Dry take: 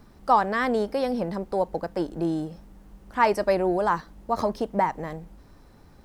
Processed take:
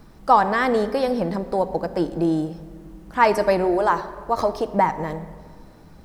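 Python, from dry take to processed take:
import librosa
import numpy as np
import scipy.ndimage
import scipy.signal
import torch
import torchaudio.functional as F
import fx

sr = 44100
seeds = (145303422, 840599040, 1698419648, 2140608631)

y = fx.peak_eq(x, sr, hz=190.0, db=-13.0, octaves=0.34, at=(3.64, 4.66))
y = fx.room_shoebox(y, sr, seeds[0], volume_m3=2900.0, walls='mixed', distance_m=0.61)
y = y * 10.0 ** (4.0 / 20.0)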